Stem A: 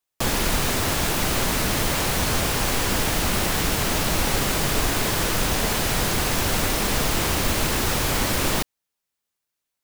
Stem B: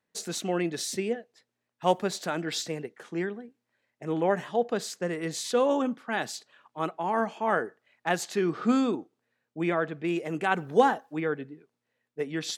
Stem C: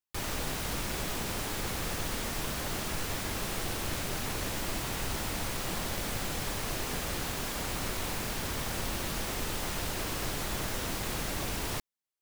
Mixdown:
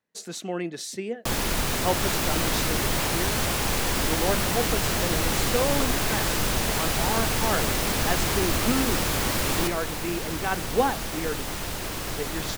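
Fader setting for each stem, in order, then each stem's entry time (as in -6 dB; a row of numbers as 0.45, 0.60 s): -3.5, -2.0, +2.5 dB; 1.05, 0.00, 1.85 s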